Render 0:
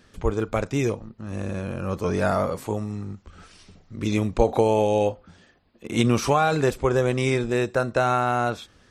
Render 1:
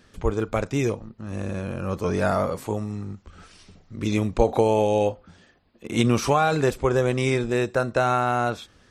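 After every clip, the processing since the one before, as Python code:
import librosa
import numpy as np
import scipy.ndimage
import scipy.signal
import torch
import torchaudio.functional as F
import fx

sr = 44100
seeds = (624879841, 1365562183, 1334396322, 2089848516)

y = x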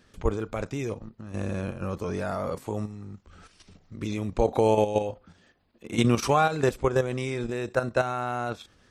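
y = fx.level_steps(x, sr, step_db=10)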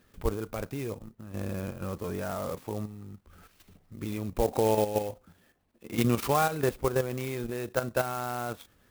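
y = fx.clock_jitter(x, sr, seeds[0], jitter_ms=0.044)
y = F.gain(torch.from_numpy(y), -3.5).numpy()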